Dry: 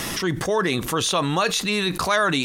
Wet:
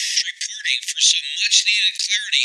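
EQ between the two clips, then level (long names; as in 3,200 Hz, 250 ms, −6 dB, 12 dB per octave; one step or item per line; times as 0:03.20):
Butterworth high-pass 1,800 Hz 96 dB per octave
low-pass filter 6,600 Hz 24 dB per octave
spectral tilt +4.5 dB per octave
+1.5 dB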